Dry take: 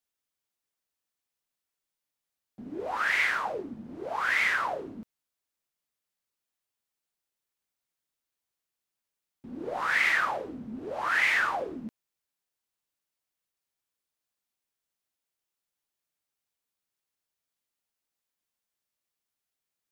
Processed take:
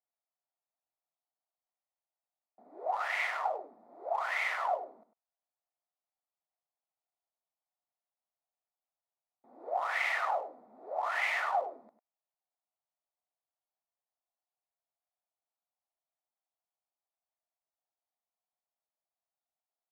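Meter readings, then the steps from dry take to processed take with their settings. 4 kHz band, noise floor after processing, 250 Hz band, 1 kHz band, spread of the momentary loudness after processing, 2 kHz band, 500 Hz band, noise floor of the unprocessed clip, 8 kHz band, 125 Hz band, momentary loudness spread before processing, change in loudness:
-8.0 dB, under -85 dBFS, -21.0 dB, -1.0 dB, 15 LU, -8.0 dB, -1.5 dB, under -85 dBFS, -8.5 dB, under -30 dB, 18 LU, -6.0 dB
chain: Wiener smoothing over 15 samples; resonant high-pass 700 Hz, resonance Q 4.5; notch 1600 Hz, Q 6.5; echo 99 ms -12 dB; gain -7.5 dB

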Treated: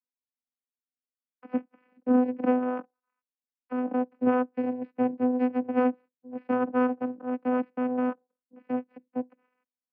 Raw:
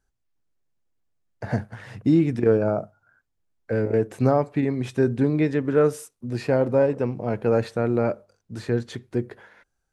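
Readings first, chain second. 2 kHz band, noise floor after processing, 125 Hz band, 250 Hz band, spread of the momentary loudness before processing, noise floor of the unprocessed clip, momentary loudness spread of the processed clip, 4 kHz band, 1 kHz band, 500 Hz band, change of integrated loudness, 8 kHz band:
-5.0 dB, under -85 dBFS, -28.0 dB, -2.0 dB, 11 LU, -76 dBFS, 11 LU, under -10 dB, +0.5 dB, -8.0 dB, -5.0 dB, under -30 dB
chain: added harmonics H 3 -12 dB, 4 -15 dB, 7 -35 dB, 8 -25 dB, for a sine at -6.5 dBFS; mistuned SSB -89 Hz 200–2200 Hz; vocoder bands 8, saw 251 Hz

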